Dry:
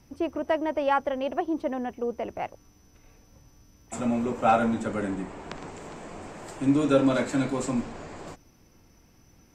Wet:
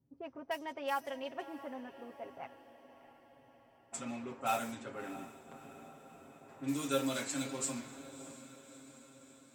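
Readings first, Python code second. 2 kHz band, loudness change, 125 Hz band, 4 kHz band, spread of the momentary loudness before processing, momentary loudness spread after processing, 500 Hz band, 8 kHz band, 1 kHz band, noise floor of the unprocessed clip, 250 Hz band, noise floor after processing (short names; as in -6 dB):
-8.5 dB, -12.5 dB, -14.5 dB, -3.5 dB, 19 LU, 21 LU, -14.0 dB, +1.0 dB, -12.0 dB, -59 dBFS, -14.5 dB, -65 dBFS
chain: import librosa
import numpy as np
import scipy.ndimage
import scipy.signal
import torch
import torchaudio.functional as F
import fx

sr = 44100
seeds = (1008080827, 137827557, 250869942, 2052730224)

y = fx.block_float(x, sr, bits=7)
y = scipy.signal.sosfilt(scipy.signal.butter(2, 70.0, 'highpass', fs=sr, output='sos'), y)
y = librosa.effects.preemphasis(y, coef=0.9, zi=[0.0])
y = fx.hum_notches(y, sr, base_hz=50, count=2)
y = y + 0.64 * np.pad(y, (int(7.4 * sr / 1000.0), 0))[:len(y)]
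y = fx.env_lowpass(y, sr, base_hz=350.0, full_db=-35.0)
y = fx.echo_diffused(y, sr, ms=635, feedback_pct=59, wet_db=-15.0)
y = y * 10.0 ** (2.0 / 20.0)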